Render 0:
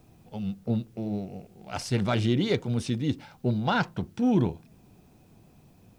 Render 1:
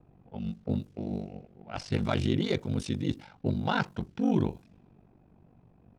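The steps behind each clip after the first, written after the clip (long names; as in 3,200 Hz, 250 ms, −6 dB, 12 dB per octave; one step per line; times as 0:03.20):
low-pass that shuts in the quiet parts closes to 1,400 Hz, open at −25 dBFS
ring modulation 24 Hz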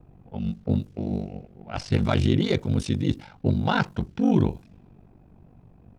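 low-shelf EQ 90 Hz +8 dB
level +4.5 dB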